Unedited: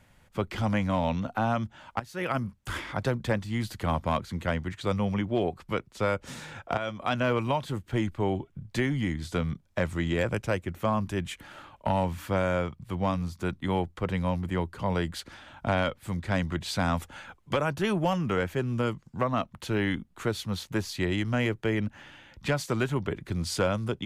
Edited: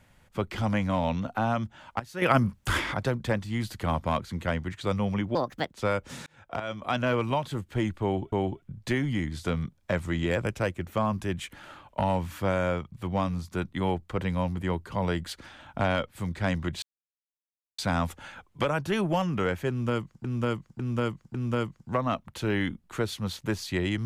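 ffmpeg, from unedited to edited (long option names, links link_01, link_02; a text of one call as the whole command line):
ffmpeg -i in.wav -filter_complex "[0:a]asplit=11[link_01][link_02][link_03][link_04][link_05][link_06][link_07][link_08][link_09][link_10][link_11];[link_01]atrim=end=2.222[link_12];[link_02]atrim=start=2.218:end=2.942,asetpts=PTS-STARTPTS,volume=7.5dB[link_13];[link_03]atrim=start=2.938:end=5.354[link_14];[link_04]atrim=start=5.35:end=5.91,asetpts=PTS-STARTPTS,asetrate=64386,aresample=44100,atrim=end_sample=16915,asetpts=PTS-STARTPTS[link_15];[link_05]atrim=start=5.906:end=6.44,asetpts=PTS-STARTPTS,afade=type=out:start_time=0.53:duration=0.004:curve=hsin[link_16];[link_06]atrim=start=6.44:end=8.502,asetpts=PTS-STARTPTS,afade=type=in:duration=0.49[link_17];[link_07]atrim=start=8.198:end=16.7,asetpts=PTS-STARTPTS,afade=type=out:start_time=8.498:duration=0.004:curve=hsin,apad=pad_dur=0.96[link_18];[link_08]atrim=start=16.7:end=19.162,asetpts=PTS-STARTPTS,afade=type=in:duration=0.004:curve=hsin[link_19];[link_09]atrim=start=18.608:end=19.162[link_20];[link_10]atrim=start=18.608:end=19.162[link_21];[link_11]atrim=start=18.608[link_22];[link_12][link_13]acrossfade=duration=0.004:curve1=hsin:curve2=hsin[link_23];[link_23][link_14]acrossfade=duration=0.004:curve1=hsin:curve2=hsin[link_24];[link_24][link_15]acrossfade=duration=0.004:curve1=hsin:curve2=hsin[link_25];[link_16][link_17]concat=n=2:v=0:a=1[link_26];[link_25][link_26]acrossfade=duration=0.004:curve1=hsin:curve2=hsin[link_27];[link_18][link_19]concat=n=2:v=0:a=1[link_28];[link_27][link_28]acrossfade=duration=0.004:curve1=hsin:curve2=hsin[link_29];[link_29][link_20]acrossfade=duration=0.004:curve1=hsin:curve2=hsin[link_30];[link_30][link_21]acrossfade=duration=0.004:curve1=hsin:curve2=hsin[link_31];[link_31][link_22]acrossfade=duration=0.004:curve1=hsin:curve2=hsin" out.wav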